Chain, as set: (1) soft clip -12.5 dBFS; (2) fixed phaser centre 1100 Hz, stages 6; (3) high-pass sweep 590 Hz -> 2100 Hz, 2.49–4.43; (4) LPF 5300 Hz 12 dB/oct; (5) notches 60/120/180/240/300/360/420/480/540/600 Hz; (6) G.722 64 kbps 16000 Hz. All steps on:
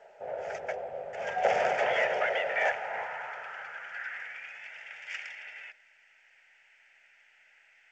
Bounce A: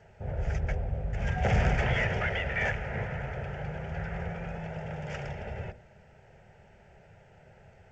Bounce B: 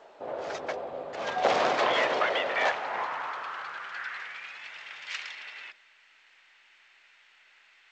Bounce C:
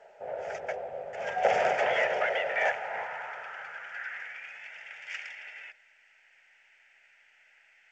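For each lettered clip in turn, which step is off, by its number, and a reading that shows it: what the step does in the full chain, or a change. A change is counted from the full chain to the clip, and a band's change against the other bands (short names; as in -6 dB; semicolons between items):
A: 3, 125 Hz band +30.0 dB; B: 2, 250 Hz band +8.0 dB; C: 1, distortion -21 dB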